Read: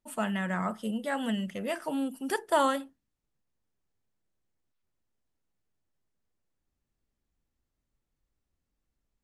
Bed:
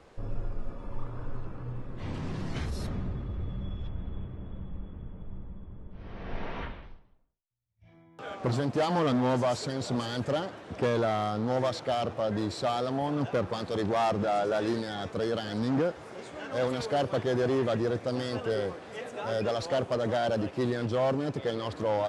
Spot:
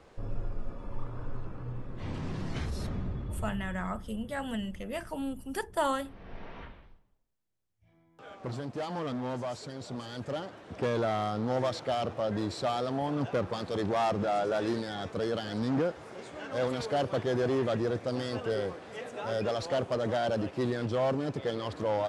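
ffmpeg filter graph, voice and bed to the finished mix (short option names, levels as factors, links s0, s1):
-filter_complex "[0:a]adelay=3250,volume=0.631[s0];[1:a]volume=2,afade=t=out:st=3.35:d=0.49:silence=0.421697,afade=t=in:st=10.01:d=1.16:silence=0.446684[s1];[s0][s1]amix=inputs=2:normalize=0"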